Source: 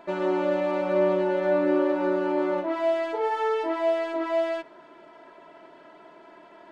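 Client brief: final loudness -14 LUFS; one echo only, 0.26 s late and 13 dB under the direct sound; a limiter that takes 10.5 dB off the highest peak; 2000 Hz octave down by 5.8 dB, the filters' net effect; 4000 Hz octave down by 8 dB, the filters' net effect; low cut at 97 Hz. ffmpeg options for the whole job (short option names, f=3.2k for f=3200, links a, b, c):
-af "highpass=97,equalizer=f=2k:t=o:g=-6,equalizer=f=4k:t=o:g=-8.5,alimiter=limit=-23dB:level=0:latency=1,aecho=1:1:260:0.224,volume=16.5dB"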